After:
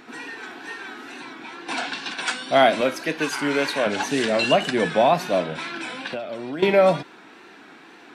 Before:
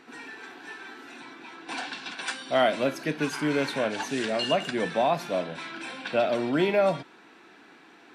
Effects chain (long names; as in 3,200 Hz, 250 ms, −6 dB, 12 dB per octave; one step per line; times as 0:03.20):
0:02.81–0:03.87: high-pass filter 420 Hz 6 dB per octave
0:05.82–0:06.63: downward compressor 20 to 1, threshold −34 dBFS, peak gain reduction 15.5 dB
tape wow and flutter 71 cents
level +6.5 dB